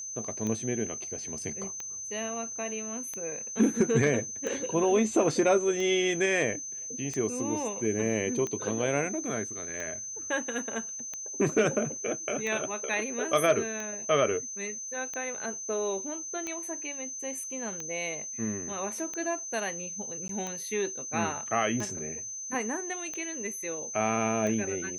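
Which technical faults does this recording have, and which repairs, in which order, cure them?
tick 45 rpm -21 dBFS
tone 6200 Hz -36 dBFS
20.28–20.29 gap 13 ms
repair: de-click; notch 6200 Hz, Q 30; interpolate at 20.28, 13 ms

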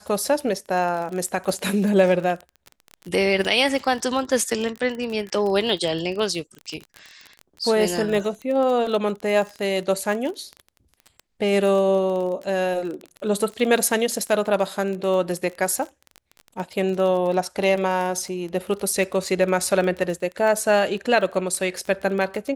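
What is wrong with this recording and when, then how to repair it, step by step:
crackle 22/s -27 dBFS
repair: de-click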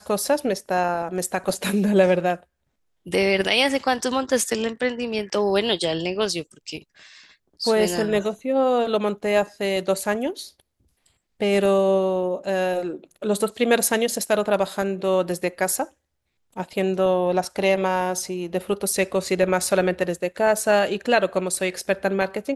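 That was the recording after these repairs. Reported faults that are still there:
none

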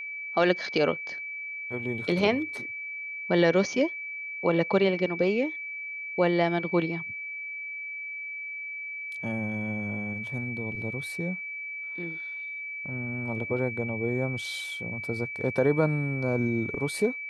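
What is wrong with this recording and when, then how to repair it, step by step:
tone 2300 Hz -34 dBFS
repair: notch 2300 Hz, Q 30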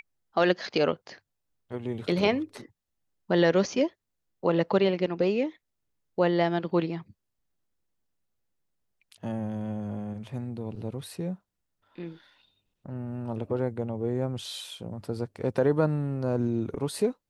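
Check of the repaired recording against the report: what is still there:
none

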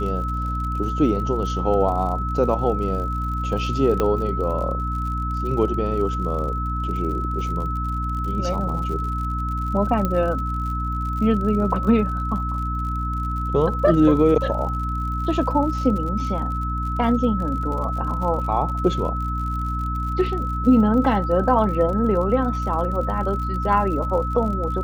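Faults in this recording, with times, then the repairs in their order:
crackle 59/s -31 dBFS
hum 60 Hz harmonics 5 -26 dBFS
tone 1300 Hz -27 dBFS
4 pop -9 dBFS
10.05 pop -11 dBFS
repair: de-click; notch 1300 Hz, Q 30; de-hum 60 Hz, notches 5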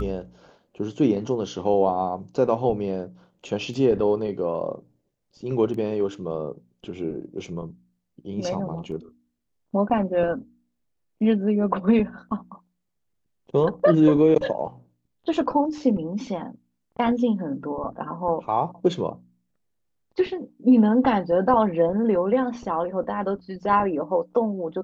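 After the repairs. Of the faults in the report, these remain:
none

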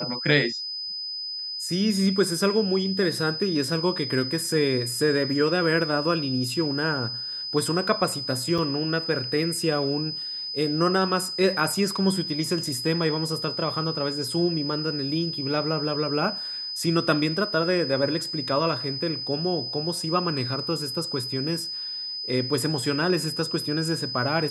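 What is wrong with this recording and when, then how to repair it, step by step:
tone 5000 Hz -30 dBFS
8.58–8.59 gap 5.3 ms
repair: notch 5000 Hz, Q 30; interpolate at 8.58, 5.3 ms

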